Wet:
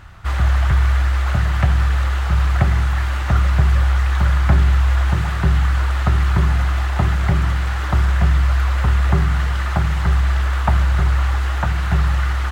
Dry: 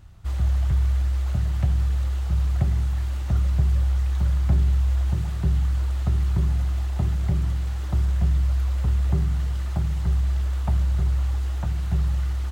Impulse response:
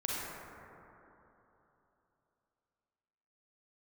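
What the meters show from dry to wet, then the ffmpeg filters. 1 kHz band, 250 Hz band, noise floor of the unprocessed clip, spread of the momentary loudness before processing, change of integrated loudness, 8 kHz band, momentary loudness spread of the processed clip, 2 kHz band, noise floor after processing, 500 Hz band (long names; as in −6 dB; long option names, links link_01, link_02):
+17.0 dB, +6.5 dB, −27 dBFS, 5 LU, +6.0 dB, can't be measured, 4 LU, +19.5 dB, −20 dBFS, +10.5 dB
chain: -af "equalizer=frequency=1500:width=0.57:gain=15,volume=5.5dB"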